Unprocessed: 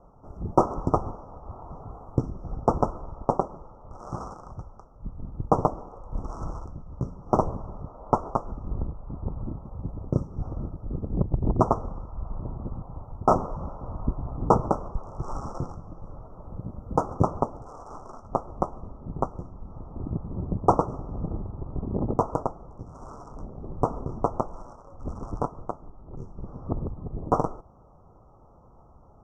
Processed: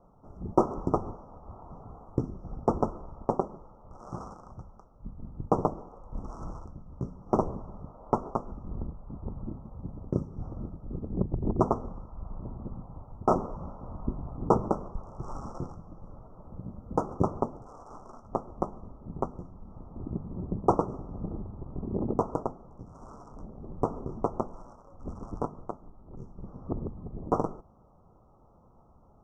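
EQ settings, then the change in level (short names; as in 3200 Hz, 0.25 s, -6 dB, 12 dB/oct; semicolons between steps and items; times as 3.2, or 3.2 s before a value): bell 210 Hz +5 dB 0.68 oct; notches 50/100/150/200/250 Hz; dynamic EQ 380 Hz, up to +5 dB, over -39 dBFS, Q 2.3; -5.5 dB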